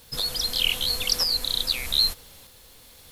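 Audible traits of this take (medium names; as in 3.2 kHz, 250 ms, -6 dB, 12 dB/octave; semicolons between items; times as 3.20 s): tremolo saw up 0.81 Hz, depth 40%; a quantiser's noise floor 10-bit, dither none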